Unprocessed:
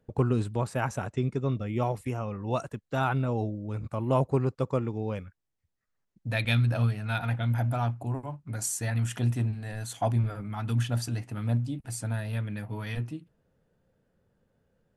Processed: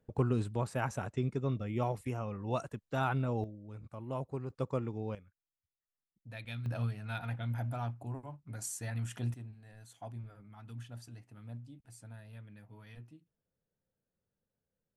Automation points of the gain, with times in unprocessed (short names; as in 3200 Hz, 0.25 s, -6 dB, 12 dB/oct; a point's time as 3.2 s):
-5 dB
from 3.44 s -13.5 dB
from 4.5 s -6.5 dB
from 5.15 s -17 dB
from 6.66 s -9 dB
from 9.34 s -18.5 dB